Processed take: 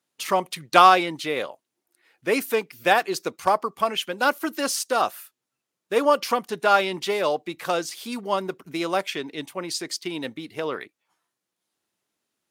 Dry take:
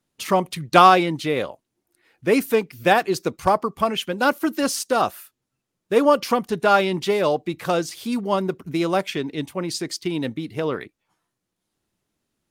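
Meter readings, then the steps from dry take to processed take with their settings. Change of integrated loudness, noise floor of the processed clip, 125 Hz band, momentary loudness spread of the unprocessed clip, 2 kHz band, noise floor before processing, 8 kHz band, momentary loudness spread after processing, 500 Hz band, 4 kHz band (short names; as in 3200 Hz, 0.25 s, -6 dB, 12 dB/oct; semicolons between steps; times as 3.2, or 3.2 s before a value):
-2.5 dB, -84 dBFS, -11.0 dB, 10 LU, -0.5 dB, -81 dBFS, 0.0 dB, 12 LU, -3.5 dB, 0.0 dB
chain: HPF 570 Hz 6 dB/oct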